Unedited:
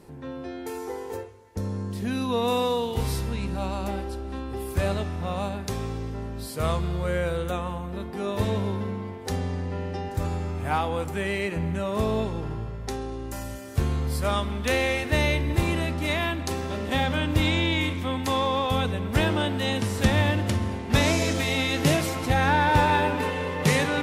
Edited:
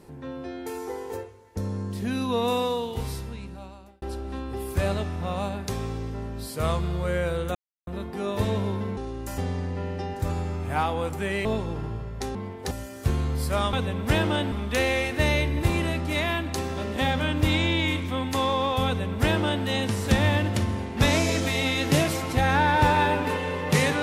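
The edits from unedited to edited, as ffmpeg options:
-filter_complex "[0:a]asplit=11[a][b][c][d][e][f][g][h][i][j][k];[a]atrim=end=4.02,asetpts=PTS-STARTPTS,afade=t=out:st=2.41:d=1.61[l];[b]atrim=start=4.02:end=7.55,asetpts=PTS-STARTPTS,afade=t=in:d=0.004:c=hsin,afade=t=out:st=3.526:d=0.004:c=hsin[m];[c]atrim=start=7.55:end=7.87,asetpts=PTS-STARTPTS,volume=0[n];[d]atrim=start=7.87:end=8.972,asetpts=PTS-STARTPTS,afade=t=in:d=0.004:c=hsin[o];[e]atrim=start=13.018:end=13.432[p];[f]atrim=start=9.328:end=11.402[q];[g]atrim=start=12.118:end=13.022[r];[h]atrim=start=8.968:end=9.332[s];[i]atrim=start=13.428:end=14.452[t];[j]atrim=start=18.788:end=19.582[u];[k]atrim=start=14.448[v];[l][m][n][o]concat=n=4:v=0:a=1[w];[w][p]acrossfade=d=0.004:c1=hsin:c2=hsin[x];[x][q]acrossfade=d=0.004:c1=hsin:c2=hsin[y];[y][r]acrossfade=d=0.004:c1=hsin:c2=hsin[z];[z][s]acrossfade=d=0.004:c1=hsin:c2=hsin[aa];[aa][t]acrossfade=d=0.004:c1=hsin:c2=hsin[ab];[ab][u]acrossfade=d=0.004:c1=hsin:c2=hsin[ac];[ac][v]acrossfade=d=0.004:c1=hsin:c2=hsin"

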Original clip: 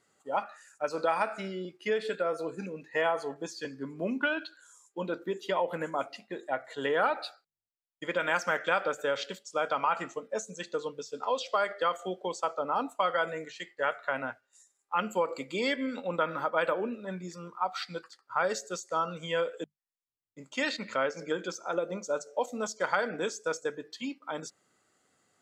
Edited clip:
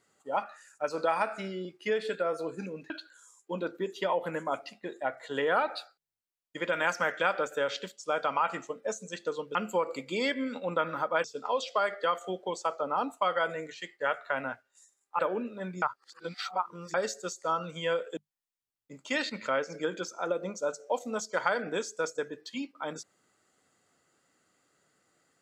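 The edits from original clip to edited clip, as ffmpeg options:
-filter_complex "[0:a]asplit=7[a][b][c][d][e][f][g];[a]atrim=end=2.902[h];[b]atrim=start=4.368:end=11.022[i];[c]atrim=start=14.968:end=16.662[j];[d]atrim=start=11.018:end=14.972[k];[e]atrim=start=16.658:end=17.292[l];[f]atrim=start=17.288:end=18.412,asetpts=PTS-STARTPTS,areverse[m];[g]atrim=start=18.408[n];[h][i]acrossfade=d=0.004:c1=hsin:c2=hsin[o];[o][j]acrossfade=d=0.004:c1=hsin:c2=hsin[p];[p][k]acrossfade=d=0.004:c1=hsin:c2=hsin[q];[q][l]acrossfade=d=0.004:c1=hsin:c2=hsin[r];[r][m]acrossfade=d=0.004:c1=hsin:c2=hsin[s];[s][n]acrossfade=d=0.004:c1=hsin:c2=hsin"

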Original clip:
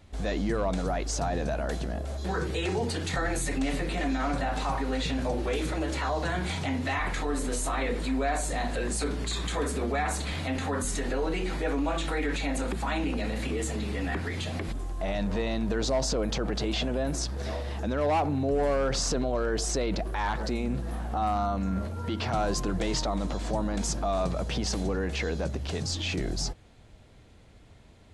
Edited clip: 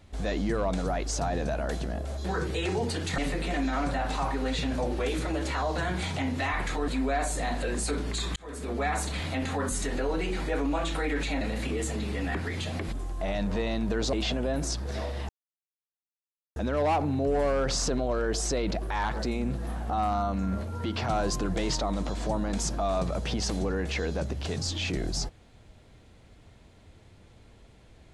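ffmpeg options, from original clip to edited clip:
-filter_complex "[0:a]asplit=7[a][b][c][d][e][f][g];[a]atrim=end=3.182[h];[b]atrim=start=3.648:end=7.352[i];[c]atrim=start=8.008:end=9.49,asetpts=PTS-STARTPTS,afade=t=out:st=1.478:d=0.004:c=hsin[j];[d]atrim=start=9.49:end=12.542,asetpts=PTS-STARTPTS,afade=t=in:d=0.49[k];[e]atrim=start=13.208:end=15.932[l];[f]atrim=start=16.638:end=17.8,asetpts=PTS-STARTPTS,afade=t=out:st=1.158:d=0.004:c=hsin,apad=pad_dur=1.27[m];[g]atrim=start=17.8,asetpts=PTS-STARTPTS,afade=t=in:d=0.004:c=hsin[n];[h][i]acrossfade=d=0.004:c1=hsin:c2=hsin[o];[j][k]concat=n=2:v=0:a=1[p];[o][p]acrossfade=d=0.004:c1=hsin:c2=hsin[q];[q][l]acrossfade=d=0.004:c1=hsin:c2=hsin[r];[m][n]concat=n=2:v=0:a=1[s];[r][s]acrossfade=d=0.004:c1=hsin:c2=hsin"

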